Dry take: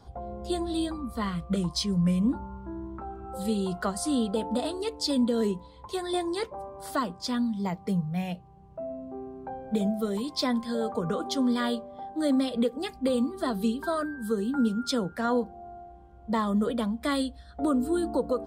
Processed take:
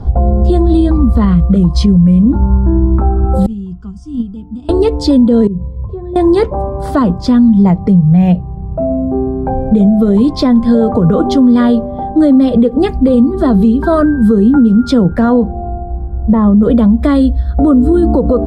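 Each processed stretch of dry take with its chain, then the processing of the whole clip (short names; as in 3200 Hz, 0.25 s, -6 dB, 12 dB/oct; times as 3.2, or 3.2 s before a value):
3.46–4.69 fixed phaser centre 2800 Hz, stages 8 + gate -26 dBFS, range -19 dB + EQ curve 260 Hz 0 dB, 850 Hz -12 dB, 1300 Hz -12 dB, 5500 Hz +5 dB, 8100 Hz -2 dB
5.47–6.16 comb 1.8 ms, depth 56% + compressor 2:1, threshold -40 dBFS + band-pass 140 Hz, Q 1
15.69–16.63 compressor 2:1, threshold -31 dBFS + air absorption 480 m
whole clip: tilt -4.5 dB/oct; compressor 4:1, threshold -20 dBFS; maximiser +18 dB; gain -1 dB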